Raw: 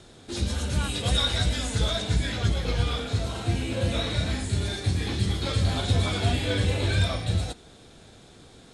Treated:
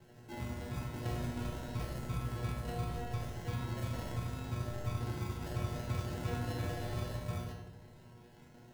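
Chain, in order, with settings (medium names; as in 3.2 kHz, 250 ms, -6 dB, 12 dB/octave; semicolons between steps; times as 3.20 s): peaking EQ 150 Hz +12.5 dB 0.38 oct; in parallel at +1 dB: compression, threshold -36 dBFS, peak gain reduction 18.5 dB; on the sum: sample-and-hold 37×; feedback comb 120 Hz, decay 0.64 s, harmonics all, mix 90%; filtered feedback delay 78 ms, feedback 72%, low-pass 1.9 kHz, level -5 dB; trim -4 dB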